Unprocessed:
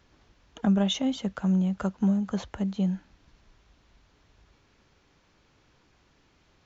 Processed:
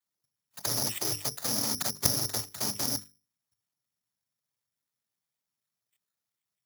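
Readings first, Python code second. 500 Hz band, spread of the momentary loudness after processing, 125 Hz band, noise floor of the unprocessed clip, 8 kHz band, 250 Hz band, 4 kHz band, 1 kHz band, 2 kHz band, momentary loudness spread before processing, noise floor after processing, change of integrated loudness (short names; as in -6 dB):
-5.0 dB, 5 LU, -10.5 dB, -65 dBFS, n/a, -16.5 dB, +4.5 dB, -1.0 dB, +1.5 dB, 7 LU, under -85 dBFS, -1.5 dB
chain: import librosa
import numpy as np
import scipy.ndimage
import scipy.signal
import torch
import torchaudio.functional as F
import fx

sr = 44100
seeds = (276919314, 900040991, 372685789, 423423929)

y = fx.cycle_switch(x, sr, every=2, mode='inverted')
y = fx.noise_reduce_blind(y, sr, reduce_db=23)
y = fx.noise_vocoder(y, sr, seeds[0], bands=12)
y = fx.peak_eq(y, sr, hz=350.0, db=-6.5, octaves=1.1)
y = fx.level_steps(y, sr, step_db=12)
y = fx.hum_notches(y, sr, base_hz=50, count=9)
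y = (np.kron(scipy.signal.resample_poly(y, 1, 8), np.eye(8)[0]) * 8)[:len(y)]
y = fx.doppler_dist(y, sr, depth_ms=0.17)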